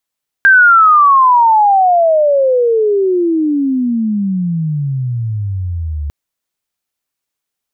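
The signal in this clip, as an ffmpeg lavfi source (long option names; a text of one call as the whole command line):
ffmpeg -f lavfi -i "aevalsrc='pow(10,(-3-14*t/5.65)/20)*sin(2*PI*1600*5.65/log(71/1600)*(exp(log(71/1600)*t/5.65)-1))':duration=5.65:sample_rate=44100" out.wav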